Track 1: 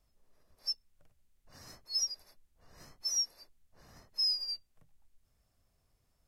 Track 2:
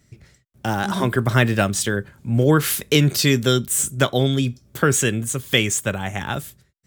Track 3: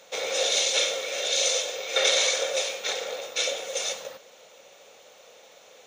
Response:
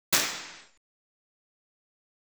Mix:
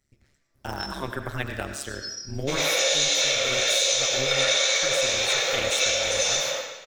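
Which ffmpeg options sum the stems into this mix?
-filter_complex "[0:a]aecho=1:1:6:0.9,volume=-19dB,asplit=2[link_01][link_02];[link_02]volume=-5dB[link_03];[1:a]tremolo=f=140:d=0.974,dynaudnorm=framelen=140:gausssize=7:maxgain=9dB,volume=-10.5dB,asplit=2[link_04][link_05];[link_05]volume=-24dB[link_06];[2:a]agate=range=-10dB:threshold=-49dB:ratio=16:detection=peak,adelay=2350,volume=1.5dB,asplit=2[link_07][link_08];[link_08]volume=-9dB[link_09];[3:a]atrim=start_sample=2205[link_10];[link_03][link_06][link_09]amix=inputs=3:normalize=0[link_11];[link_11][link_10]afir=irnorm=-1:irlink=0[link_12];[link_01][link_04][link_07][link_12]amix=inputs=4:normalize=0,equalizer=frequency=210:width=0.92:gain=-6,acompressor=threshold=-20dB:ratio=5"

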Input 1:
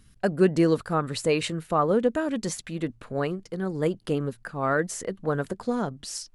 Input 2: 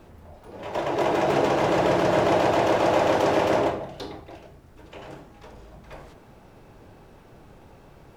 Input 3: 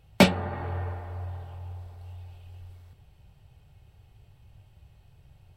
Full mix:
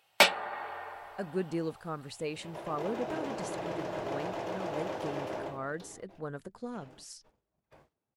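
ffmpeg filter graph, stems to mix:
ffmpeg -i stem1.wav -i stem2.wav -i stem3.wav -filter_complex "[0:a]adelay=950,volume=-13dB[link_01];[1:a]highpass=71,agate=range=-22dB:threshold=-43dB:ratio=16:detection=peak,adelay=1800,volume=-16dB[link_02];[2:a]highpass=810,volume=2dB[link_03];[link_01][link_02][link_03]amix=inputs=3:normalize=0" out.wav

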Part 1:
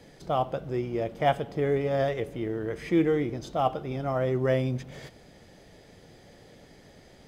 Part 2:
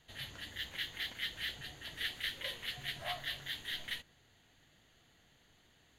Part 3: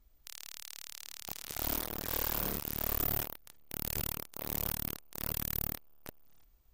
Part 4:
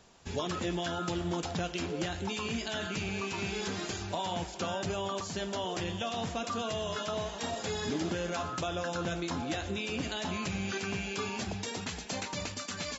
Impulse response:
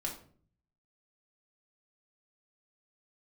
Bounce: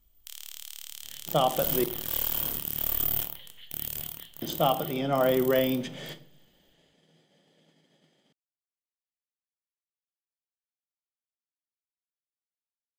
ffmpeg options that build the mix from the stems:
-filter_complex "[0:a]agate=range=-33dB:threshold=-40dB:ratio=3:detection=peak,highpass=frequency=160:width=0.5412,highpass=frequency=160:width=1.3066,alimiter=limit=-18dB:level=0:latency=1:release=273,adelay=1050,volume=1dB,asplit=3[link_01][link_02][link_03];[link_01]atrim=end=1.84,asetpts=PTS-STARTPTS,afade=type=out:start_time=1.836:duration=0.004:curve=hsin[link_04];[link_02]atrim=start=1.84:end=4.42,asetpts=PTS-STARTPTS,volume=0[link_05];[link_03]atrim=start=4.42,asetpts=PTS-STARTPTS,afade=type=in:duration=0.004:curve=hsin[link_06];[link_04][link_05][link_06]concat=n=3:v=0:a=1,asplit=2[link_07][link_08];[link_08]volume=-7dB[link_09];[1:a]acompressor=threshold=-48dB:ratio=6,adelay=950,volume=-7.5dB[link_10];[2:a]highshelf=frequency=8800:gain=11,volume=-6.5dB,afade=type=out:start_time=3.67:duration=0.46:silence=0.421697,asplit=2[link_11][link_12];[link_12]volume=-4.5dB[link_13];[4:a]atrim=start_sample=2205[link_14];[link_09][link_13]amix=inputs=2:normalize=0[link_15];[link_15][link_14]afir=irnorm=-1:irlink=0[link_16];[link_07][link_10][link_11][link_16]amix=inputs=4:normalize=0,equalizer=frequency=160:width_type=o:width=0.33:gain=8,equalizer=frequency=3150:width_type=o:width=0.33:gain=12,equalizer=frequency=8000:width_type=o:width=0.33:gain=4"

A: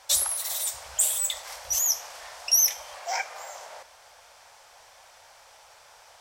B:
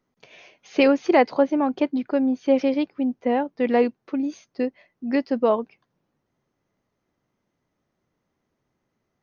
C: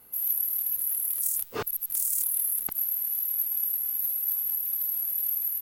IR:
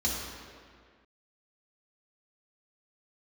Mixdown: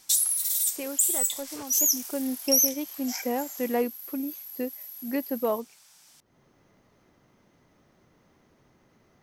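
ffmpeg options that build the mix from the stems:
-filter_complex "[0:a]aderivative,volume=2dB[link_01];[1:a]acompressor=mode=upward:threshold=-38dB:ratio=2.5,asoftclip=type=hard:threshold=-9.5dB,volume=-7dB,afade=type=in:start_time=1.7:duration=0.72:silence=0.266073[link_02];[2:a]volume=-13.5dB[link_03];[link_01][link_02][link_03]amix=inputs=3:normalize=0,alimiter=limit=-10.5dB:level=0:latency=1:release=374"

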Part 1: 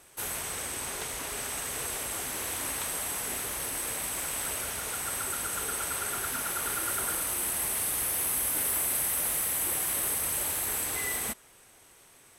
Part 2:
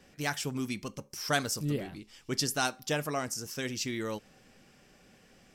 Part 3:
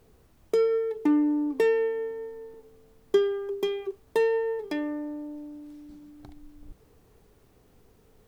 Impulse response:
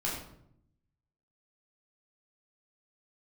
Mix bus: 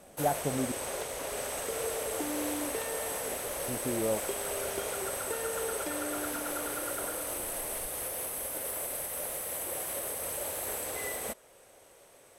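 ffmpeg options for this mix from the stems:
-filter_complex "[0:a]alimiter=limit=-23dB:level=0:latency=1:release=365,equalizer=frequency=550:width=1.7:gain=14.5,volume=-3.5dB[link_01];[1:a]lowpass=frequency=670:width_type=q:width=4.9,volume=0dB,asplit=3[link_02][link_03][link_04];[link_02]atrim=end=0.72,asetpts=PTS-STARTPTS,afade=type=out:start_time=0.716:duration=0.004:curve=hsin[link_05];[link_03]atrim=start=0.72:end=3.68,asetpts=PTS-STARTPTS,volume=0[link_06];[link_04]atrim=start=3.68,asetpts=PTS-STARTPTS,afade=type=in:duration=0.004:curve=hsin[link_07];[link_05][link_06][link_07]concat=n=3:v=0:a=1[link_08];[2:a]bandreject=frequency=50:width_type=h:width=6,bandreject=frequency=100:width_type=h:width=6,bandreject=frequency=150:width_type=h:width=6,bandreject=frequency=200:width_type=h:width=6,bandreject=frequency=250:width_type=h:width=6,bandreject=frequency=300:width_type=h:width=6,bandreject=frequency=350:width_type=h:width=6,bandreject=frequency=400:width_type=h:width=6,bandreject=frequency=450:width_type=h:width=6,acompressor=threshold=-32dB:ratio=6,adelay=1150,volume=-3.5dB[link_09];[link_01][link_08][link_09]amix=inputs=3:normalize=0"

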